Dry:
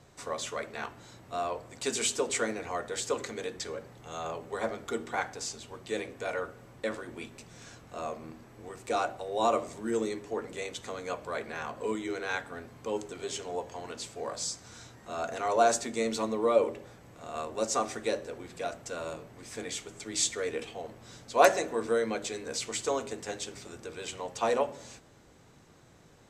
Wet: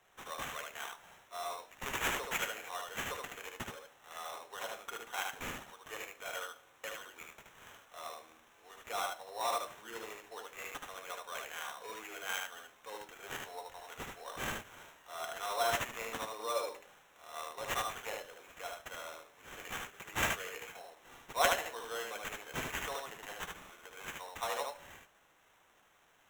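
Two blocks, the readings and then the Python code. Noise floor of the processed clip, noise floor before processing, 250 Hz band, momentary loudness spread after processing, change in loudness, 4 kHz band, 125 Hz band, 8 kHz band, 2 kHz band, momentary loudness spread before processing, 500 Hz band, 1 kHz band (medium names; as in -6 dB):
-67 dBFS, -57 dBFS, -14.5 dB, 17 LU, -7.0 dB, -3.0 dB, -6.5 dB, -8.5 dB, -1.5 dB, 16 LU, -12.0 dB, -6.0 dB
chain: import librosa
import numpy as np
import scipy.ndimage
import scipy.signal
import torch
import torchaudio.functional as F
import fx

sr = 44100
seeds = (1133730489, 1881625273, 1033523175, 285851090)

p1 = scipy.signal.sosfilt(scipy.signal.butter(2, 950.0, 'highpass', fs=sr, output='sos'), x)
p2 = fx.sample_hold(p1, sr, seeds[0], rate_hz=4700.0, jitter_pct=0)
p3 = p2 + fx.echo_single(p2, sr, ms=75, db=-3.5, dry=0)
y = p3 * librosa.db_to_amplitude(-4.0)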